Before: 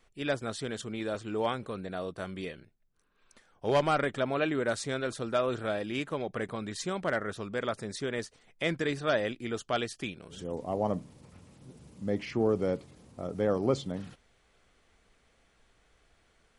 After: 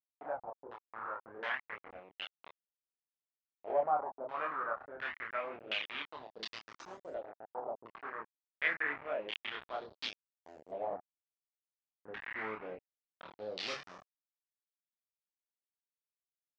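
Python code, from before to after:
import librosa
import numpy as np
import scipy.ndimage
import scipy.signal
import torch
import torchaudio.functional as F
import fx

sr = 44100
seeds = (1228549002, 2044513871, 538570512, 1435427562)

y = fx.delta_hold(x, sr, step_db=-27.5)
y = np.diff(y, prepend=0.0)
y = fx.filter_lfo_lowpass(y, sr, shape='saw_down', hz=1.4, low_hz=410.0, high_hz=3500.0, q=1.8)
y = fx.chorus_voices(y, sr, voices=2, hz=0.27, base_ms=27, depth_ms=1.2, mix_pct=45)
y = fx.filter_lfo_lowpass(y, sr, shape='saw_up', hz=0.28, low_hz=600.0, high_hz=7600.0, q=4.2)
y = F.gain(torch.from_numpy(y), 9.5).numpy()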